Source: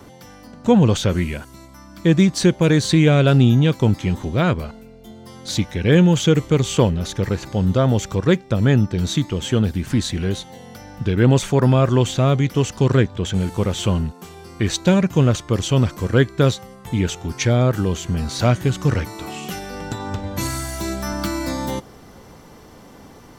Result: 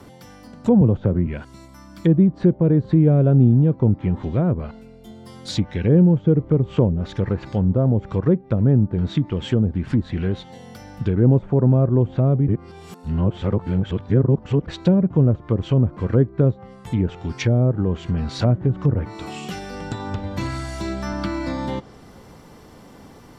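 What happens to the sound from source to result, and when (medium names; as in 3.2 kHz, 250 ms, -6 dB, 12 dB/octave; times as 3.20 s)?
0.81–1.27 s: three bands compressed up and down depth 40%
12.48–14.68 s: reverse
whole clip: low-pass that closes with the level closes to 600 Hz, closed at -13.5 dBFS; peaking EQ 150 Hz +2 dB 2.1 oct; band-stop 6.2 kHz, Q 12; trim -2 dB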